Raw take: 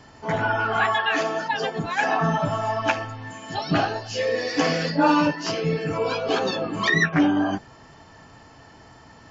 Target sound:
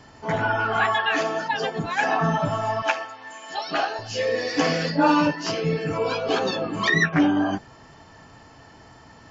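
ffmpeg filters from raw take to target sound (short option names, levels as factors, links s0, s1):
-filter_complex "[0:a]asettb=1/sr,asplit=3[s0][s1][s2];[s0]atrim=end=2.824[s3];[s1]atrim=start=2.82:end=3.99,asetpts=PTS-STARTPTS,afade=t=in:d=0.004:c=qsin,afade=t=out:st=1.166:d=0.004:c=qsin,highpass=510[s4];[s2]atrim=start=3.986[s5];[s3][s4]acrossfade=d=0.004:c1=hsin:c2=qsin[s6];[s6][s5]acrossfade=d=0.004:c1=qsin:c2=hsin"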